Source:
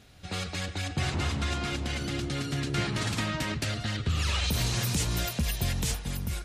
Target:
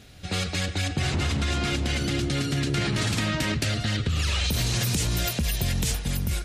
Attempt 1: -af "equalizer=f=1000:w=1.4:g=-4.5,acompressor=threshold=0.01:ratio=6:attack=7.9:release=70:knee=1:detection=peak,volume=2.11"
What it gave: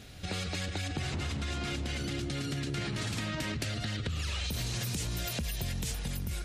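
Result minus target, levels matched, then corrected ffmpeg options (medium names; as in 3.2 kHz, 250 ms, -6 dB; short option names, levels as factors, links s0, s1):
compression: peak gain reduction +9 dB
-af "equalizer=f=1000:w=1.4:g=-4.5,acompressor=threshold=0.0355:ratio=6:attack=7.9:release=70:knee=1:detection=peak,volume=2.11"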